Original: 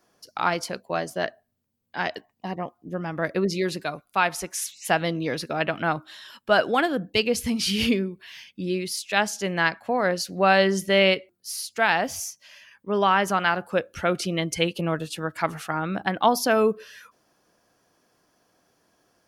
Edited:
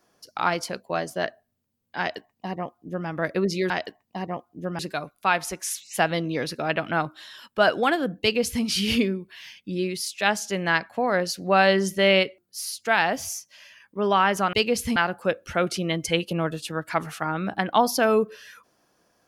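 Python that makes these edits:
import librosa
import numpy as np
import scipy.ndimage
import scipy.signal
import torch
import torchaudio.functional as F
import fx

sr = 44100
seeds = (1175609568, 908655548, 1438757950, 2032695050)

y = fx.edit(x, sr, fx.duplicate(start_s=1.99, length_s=1.09, to_s=3.7),
    fx.duplicate(start_s=7.12, length_s=0.43, to_s=13.44), tone=tone)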